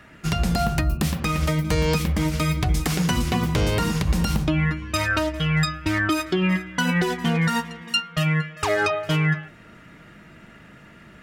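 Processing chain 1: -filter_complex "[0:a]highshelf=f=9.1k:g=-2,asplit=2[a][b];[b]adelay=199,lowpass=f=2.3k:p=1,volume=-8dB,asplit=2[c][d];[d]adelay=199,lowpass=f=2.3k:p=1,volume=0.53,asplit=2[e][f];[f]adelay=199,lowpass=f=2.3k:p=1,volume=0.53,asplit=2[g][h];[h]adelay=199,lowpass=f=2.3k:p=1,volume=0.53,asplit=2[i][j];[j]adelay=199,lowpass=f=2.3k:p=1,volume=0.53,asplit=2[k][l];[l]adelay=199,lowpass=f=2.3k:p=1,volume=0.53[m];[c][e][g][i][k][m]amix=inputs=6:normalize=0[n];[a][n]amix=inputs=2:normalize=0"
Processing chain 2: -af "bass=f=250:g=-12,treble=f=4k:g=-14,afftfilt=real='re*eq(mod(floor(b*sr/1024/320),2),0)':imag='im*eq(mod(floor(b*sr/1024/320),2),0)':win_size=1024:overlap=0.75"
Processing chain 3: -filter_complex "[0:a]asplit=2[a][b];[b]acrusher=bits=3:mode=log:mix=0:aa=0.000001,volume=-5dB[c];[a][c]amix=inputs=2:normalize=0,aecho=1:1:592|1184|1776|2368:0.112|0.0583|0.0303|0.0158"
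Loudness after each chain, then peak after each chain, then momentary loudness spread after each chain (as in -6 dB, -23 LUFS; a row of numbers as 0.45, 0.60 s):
-22.5, -30.0, -19.0 LUFS; -9.5, -15.0, -6.5 dBFS; 4, 5, 3 LU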